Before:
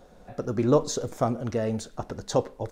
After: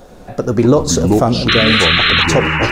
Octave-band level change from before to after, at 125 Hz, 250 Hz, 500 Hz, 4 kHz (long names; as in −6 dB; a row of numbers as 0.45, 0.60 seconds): +14.5, +14.5, +11.0, +28.5 decibels